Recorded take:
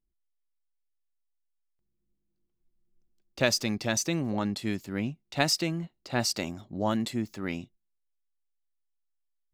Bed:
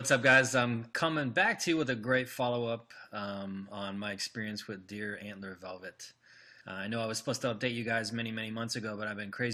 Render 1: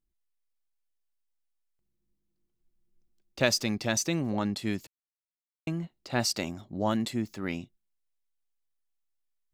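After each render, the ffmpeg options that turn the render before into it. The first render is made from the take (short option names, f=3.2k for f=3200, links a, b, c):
-filter_complex "[0:a]asplit=3[a][b][c];[a]atrim=end=4.87,asetpts=PTS-STARTPTS,afade=t=out:st=4.866:d=0.004:c=hsin[d];[b]atrim=start=4.87:end=5.67,asetpts=PTS-STARTPTS,volume=0[e];[c]atrim=start=5.67,asetpts=PTS-STARTPTS,afade=t=in:d=0.004:c=hsin[f];[d][e][f]concat=n=3:v=0:a=1"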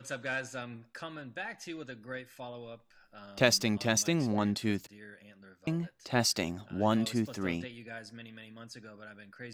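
-filter_complex "[1:a]volume=-12dB[a];[0:a][a]amix=inputs=2:normalize=0"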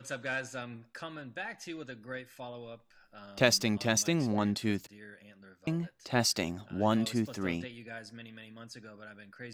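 -af anull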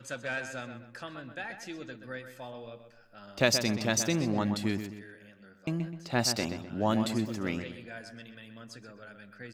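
-filter_complex "[0:a]asplit=2[a][b];[b]adelay=127,lowpass=f=3.2k:p=1,volume=-8.5dB,asplit=2[c][d];[d]adelay=127,lowpass=f=3.2k:p=1,volume=0.38,asplit=2[e][f];[f]adelay=127,lowpass=f=3.2k:p=1,volume=0.38,asplit=2[g][h];[h]adelay=127,lowpass=f=3.2k:p=1,volume=0.38[i];[a][c][e][g][i]amix=inputs=5:normalize=0"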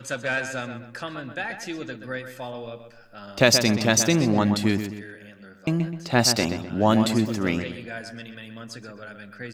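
-af "volume=8.5dB,alimiter=limit=-2dB:level=0:latency=1"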